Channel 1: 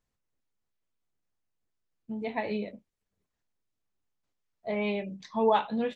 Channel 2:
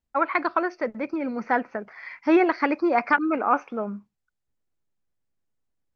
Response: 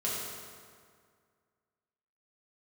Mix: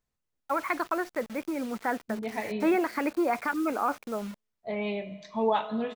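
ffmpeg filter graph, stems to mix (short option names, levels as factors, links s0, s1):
-filter_complex "[0:a]volume=0.708,asplit=2[s0][s1];[s1]volume=0.178[s2];[1:a]alimiter=limit=0.211:level=0:latency=1:release=20,acrusher=bits=6:mix=0:aa=0.000001,adelay=350,volume=0.631[s3];[2:a]atrim=start_sample=2205[s4];[s2][s4]afir=irnorm=-1:irlink=0[s5];[s0][s3][s5]amix=inputs=3:normalize=0"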